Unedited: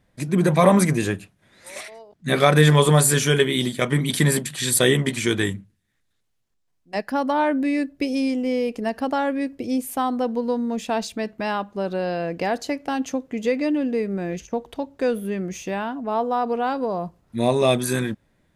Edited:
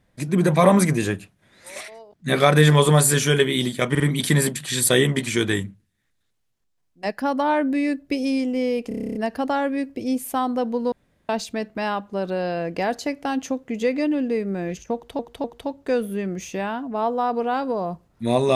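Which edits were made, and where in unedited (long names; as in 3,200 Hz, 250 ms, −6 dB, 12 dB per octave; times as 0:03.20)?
0:03.90: stutter 0.05 s, 3 plays
0:08.78: stutter 0.03 s, 10 plays
0:10.55–0:10.92: fill with room tone
0:14.57–0:14.82: repeat, 3 plays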